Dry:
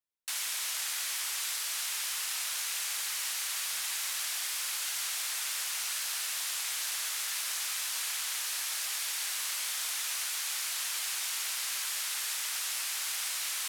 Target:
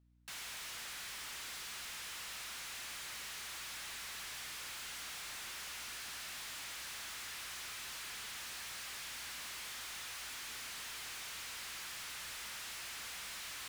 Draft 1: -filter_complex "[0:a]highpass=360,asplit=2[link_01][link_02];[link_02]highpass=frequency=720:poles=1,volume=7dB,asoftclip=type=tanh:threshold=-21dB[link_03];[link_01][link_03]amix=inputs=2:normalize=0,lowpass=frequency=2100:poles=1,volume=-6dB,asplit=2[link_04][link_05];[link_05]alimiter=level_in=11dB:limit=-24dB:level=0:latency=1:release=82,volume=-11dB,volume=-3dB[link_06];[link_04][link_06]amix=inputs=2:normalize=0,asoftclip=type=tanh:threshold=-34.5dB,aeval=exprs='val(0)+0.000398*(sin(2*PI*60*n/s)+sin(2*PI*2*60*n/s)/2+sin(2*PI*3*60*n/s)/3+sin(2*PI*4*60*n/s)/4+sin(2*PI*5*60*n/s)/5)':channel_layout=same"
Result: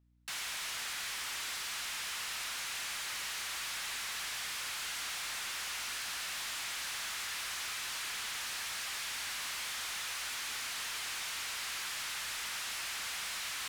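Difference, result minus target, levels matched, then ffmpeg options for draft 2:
soft clipping: distortion −7 dB
-filter_complex "[0:a]highpass=360,asplit=2[link_01][link_02];[link_02]highpass=frequency=720:poles=1,volume=7dB,asoftclip=type=tanh:threshold=-21dB[link_03];[link_01][link_03]amix=inputs=2:normalize=0,lowpass=frequency=2100:poles=1,volume=-6dB,asplit=2[link_04][link_05];[link_05]alimiter=level_in=11dB:limit=-24dB:level=0:latency=1:release=82,volume=-11dB,volume=-3dB[link_06];[link_04][link_06]amix=inputs=2:normalize=0,asoftclip=type=tanh:threshold=-44.5dB,aeval=exprs='val(0)+0.000398*(sin(2*PI*60*n/s)+sin(2*PI*2*60*n/s)/2+sin(2*PI*3*60*n/s)/3+sin(2*PI*4*60*n/s)/4+sin(2*PI*5*60*n/s)/5)':channel_layout=same"

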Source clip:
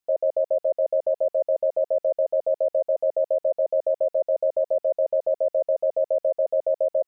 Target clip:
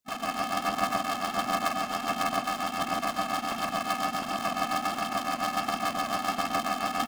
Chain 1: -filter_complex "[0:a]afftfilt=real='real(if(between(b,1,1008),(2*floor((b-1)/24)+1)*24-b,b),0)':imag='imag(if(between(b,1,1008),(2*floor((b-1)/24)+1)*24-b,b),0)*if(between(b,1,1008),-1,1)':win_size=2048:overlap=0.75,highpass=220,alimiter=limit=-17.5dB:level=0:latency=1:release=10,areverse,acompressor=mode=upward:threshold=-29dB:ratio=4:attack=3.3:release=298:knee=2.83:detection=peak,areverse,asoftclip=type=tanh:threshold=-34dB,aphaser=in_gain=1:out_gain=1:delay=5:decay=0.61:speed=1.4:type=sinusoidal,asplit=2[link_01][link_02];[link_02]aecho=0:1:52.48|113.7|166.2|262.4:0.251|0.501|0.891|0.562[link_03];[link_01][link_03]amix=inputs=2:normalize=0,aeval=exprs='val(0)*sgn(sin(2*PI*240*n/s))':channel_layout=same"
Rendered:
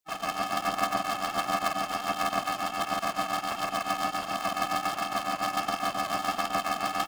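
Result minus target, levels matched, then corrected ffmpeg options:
250 Hz band −3.0 dB
-filter_complex "[0:a]afftfilt=real='real(if(between(b,1,1008),(2*floor((b-1)/24)+1)*24-b,b),0)':imag='imag(if(between(b,1,1008),(2*floor((b-1)/24)+1)*24-b,b),0)*if(between(b,1,1008),-1,1)':win_size=2048:overlap=0.75,alimiter=limit=-17.5dB:level=0:latency=1:release=10,areverse,acompressor=mode=upward:threshold=-29dB:ratio=4:attack=3.3:release=298:knee=2.83:detection=peak,areverse,asoftclip=type=tanh:threshold=-34dB,aphaser=in_gain=1:out_gain=1:delay=5:decay=0.61:speed=1.4:type=sinusoidal,asplit=2[link_01][link_02];[link_02]aecho=0:1:52.48|113.7|166.2|262.4:0.251|0.501|0.891|0.562[link_03];[link_01][link_03]amix=inputs=2:normalize=0,aeval=exprs='val(0)*sgn(sin(2*PI*240*n/s))':channel_layout=same"

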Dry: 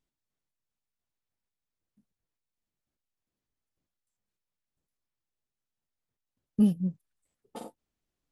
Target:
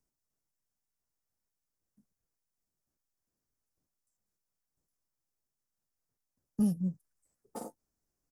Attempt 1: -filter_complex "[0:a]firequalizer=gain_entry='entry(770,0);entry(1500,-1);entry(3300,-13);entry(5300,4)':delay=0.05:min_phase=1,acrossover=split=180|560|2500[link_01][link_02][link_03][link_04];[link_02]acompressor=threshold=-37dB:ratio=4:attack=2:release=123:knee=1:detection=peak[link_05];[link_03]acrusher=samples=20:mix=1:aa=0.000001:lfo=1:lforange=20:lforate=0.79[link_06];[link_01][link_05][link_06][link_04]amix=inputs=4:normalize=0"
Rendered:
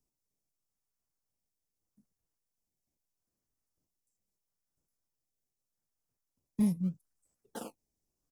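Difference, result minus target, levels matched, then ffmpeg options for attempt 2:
sample-and-hold swept by an LFO: distortion +17 dB
-filter_complex "[0:a]firequalizer=gain_entry='entry(770,0);entry(1500,-1);entry(3300,-13);entry(5300,4)':delay=0.05:min_phase=1,acrossover=split=180|560|2500[link_01][link_02][link_03][link_04];[link_02]acompressor=threshold=-37dB:ratio=4:attack=2:release=123:knee=1:detection=peak[link_05];[link_03]acrusher=samples=5:mix=1:aa=0.000001:lfo=1:lforange=5:lforate=0.79[link_06];[link_01][link_05][link_06][link_04]amix=inputs=4:normalize=0"

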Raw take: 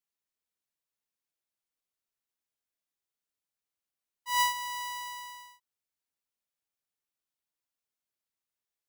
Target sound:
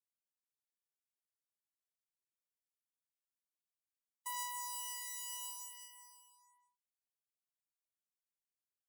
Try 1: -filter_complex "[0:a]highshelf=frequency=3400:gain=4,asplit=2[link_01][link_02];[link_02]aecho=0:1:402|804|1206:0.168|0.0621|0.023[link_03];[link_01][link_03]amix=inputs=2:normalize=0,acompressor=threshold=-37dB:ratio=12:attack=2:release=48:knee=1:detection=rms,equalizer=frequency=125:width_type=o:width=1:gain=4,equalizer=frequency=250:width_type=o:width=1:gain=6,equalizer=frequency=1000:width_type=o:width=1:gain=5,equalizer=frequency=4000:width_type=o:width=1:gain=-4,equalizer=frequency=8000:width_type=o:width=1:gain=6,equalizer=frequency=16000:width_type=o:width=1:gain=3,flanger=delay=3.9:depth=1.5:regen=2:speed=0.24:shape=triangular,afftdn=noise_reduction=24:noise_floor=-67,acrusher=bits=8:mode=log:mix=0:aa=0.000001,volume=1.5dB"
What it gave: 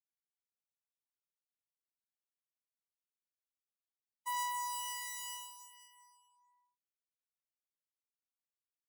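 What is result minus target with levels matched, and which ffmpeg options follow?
8,000 Hz band −3.5 dB
-filter_complex "[0:a]highshelf=frequency=3400:gain=13,asplit=2[link_01][link_02];[link_02]aecho=0:1:402|804|1206:0.168|0.0621|0.023[link_03];[link_01][link_03]amix=inputs=2:normalize=0,acompressor=threshold=-37dB:ratio=12:attack=2:release=48:knee=1:detection=rms,equalizer=frequency=125:width_type=o:width=1:gain=4,equalizer=frequency=250:width_type=o:width=1:gain=6,equalizer=frequency=1000:width_type=o:width=1:gain=5,equalizer=frequency=4000:width_type=o:width=1:gain=-4,equalizer=frequency=8000:width_type=o:width=1:gain=6,equalizer=frequency=16000:width_type=o:width=1:gain=3,flanger=delay=3.9:depth=1.5:regen=2:speed=0.24:shape=triangular,afftdn=noise_reduction=24:noise_floor=-67,acrusher=bits=8:mode=log:mix=0:aa=0.000001,volume=1.5dB"

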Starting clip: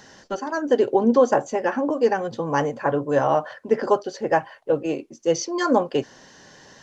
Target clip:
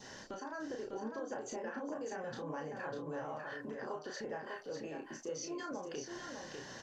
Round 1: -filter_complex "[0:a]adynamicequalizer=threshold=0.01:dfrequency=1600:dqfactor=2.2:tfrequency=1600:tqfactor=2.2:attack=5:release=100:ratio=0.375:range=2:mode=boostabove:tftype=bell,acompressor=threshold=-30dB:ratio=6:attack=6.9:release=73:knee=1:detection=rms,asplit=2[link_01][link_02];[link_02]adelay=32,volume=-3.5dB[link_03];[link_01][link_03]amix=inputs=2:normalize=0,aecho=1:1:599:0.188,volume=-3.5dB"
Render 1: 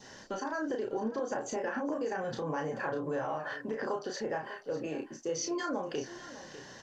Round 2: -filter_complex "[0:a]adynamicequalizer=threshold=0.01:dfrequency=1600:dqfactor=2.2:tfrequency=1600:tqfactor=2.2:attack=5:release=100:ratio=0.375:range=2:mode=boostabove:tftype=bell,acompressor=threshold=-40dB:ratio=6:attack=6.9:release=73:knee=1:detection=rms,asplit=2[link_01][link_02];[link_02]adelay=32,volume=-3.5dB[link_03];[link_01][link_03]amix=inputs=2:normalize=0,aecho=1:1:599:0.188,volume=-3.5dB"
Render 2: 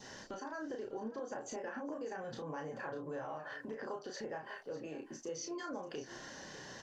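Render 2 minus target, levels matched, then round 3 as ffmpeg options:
echo-to-direct −9 dB
-filter_complex "[0:a]adynamicequalizer=threshold=0.01:dfrequency=1600:dqfactor=2.2:tfrequency=1600:tqfactor=2.2:attack=5:release=100:ratio=0.375:range=2:mode=boostabove:tftype=bell,acompressor=threshold=-40dB:ratio=6:attack=6.9:release=73:knee=1:detection=rms,asplit=2[link_01][link_02];[link_02]adelay=32,volume=-3.5dB[link_03];[link_01][link_03]amix=inputs=2:normalize=0,aecho=1:1:599:0.531,volume=-3.5dB"

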